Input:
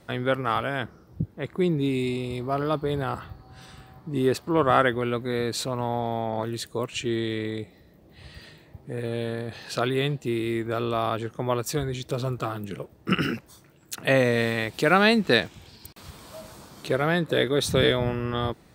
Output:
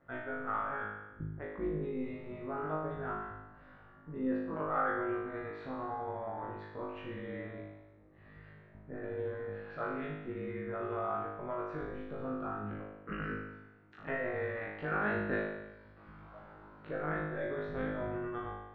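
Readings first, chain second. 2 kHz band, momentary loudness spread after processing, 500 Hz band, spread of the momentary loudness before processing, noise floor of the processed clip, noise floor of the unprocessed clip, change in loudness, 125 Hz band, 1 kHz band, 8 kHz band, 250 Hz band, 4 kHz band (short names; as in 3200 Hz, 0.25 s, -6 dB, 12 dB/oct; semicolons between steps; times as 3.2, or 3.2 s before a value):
-11.5 dB, 18 LU, -12.5 dB, 16 LU, -58 dBFS, -55 dBFS, -12.5 dB, -15.0 dB, -10.0 dB, under -40 dB, -12.5 dB, -30.0 dB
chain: compressor 2:1, threshold -27 dBFS, peak gain reduction 8 dB; AM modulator 130 Hz, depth 75%; ladder low-pass 1900 Hz, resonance 40%; flutter echo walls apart 3.3 m, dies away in 1 s; gain -3 dB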